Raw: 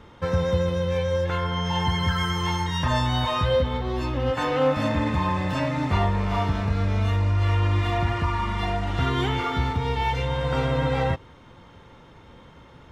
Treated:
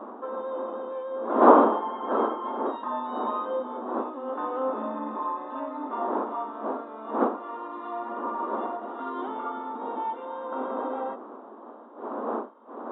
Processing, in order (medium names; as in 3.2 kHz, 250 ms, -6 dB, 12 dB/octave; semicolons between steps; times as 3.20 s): wind noise 570 Hz -21 dBFS; FFT band-pass 210–3900 Hz; resonant high shelf 1.6 kHz -11.5 dB, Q 3; trim -9 dB